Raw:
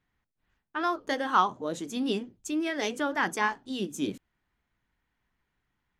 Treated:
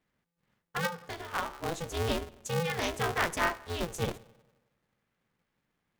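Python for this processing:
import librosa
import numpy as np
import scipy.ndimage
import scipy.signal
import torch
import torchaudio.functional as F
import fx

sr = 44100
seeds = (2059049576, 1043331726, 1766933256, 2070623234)

y = fx.comb_fb(x, sr, f0_hz=68.0, decay_s=0.86, harmonics='odd', damping=0.0, mix_pct=70, at=(0.86, 1.62), fade=0.02)
y = fx.echo_tape(y, sr, ms=91, feedback_pct=64, wet_db=-20.5, lp_hz=3700.0, drive_db=8.0, wow_cents=18)
y = y * np.sign(np.sin(2.0 * np.pi * 170.0 * np.arange(len(y)) / sr))
y = y * 10.0 ** (-1.5 / 20.0)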